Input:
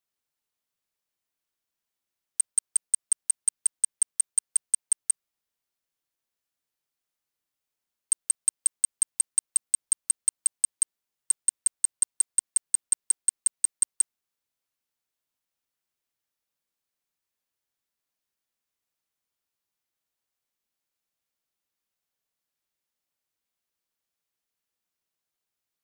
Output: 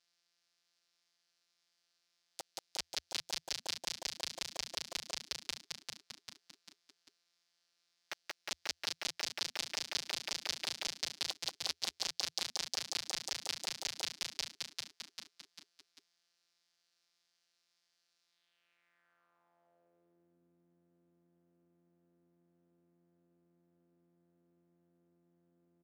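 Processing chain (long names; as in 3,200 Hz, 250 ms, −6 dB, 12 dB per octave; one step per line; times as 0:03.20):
samples sorted by size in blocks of 256 samples
on a send: echo with shifted repeats 395 ms, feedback 43%, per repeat −87 Hz, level −10 dB
on the sum: sine wavefolder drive 16 dB, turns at −12.5 dBFS
dynamic equaliser 1,200 Hz, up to −5 dB, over −38 dBFS, Q 1.4
band-pass filter sweep 4,800 Hz → 270 Hz, 0:18.24–0:20.39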